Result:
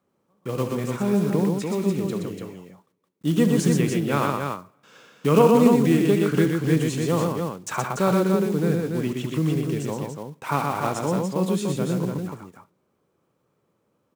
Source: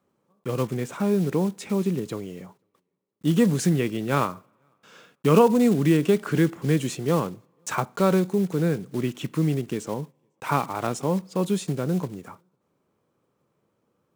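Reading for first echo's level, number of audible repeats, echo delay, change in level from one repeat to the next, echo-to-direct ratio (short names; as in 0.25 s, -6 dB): -11.5 dB, 3, 70 ms, no steady repeat, -1.0 dB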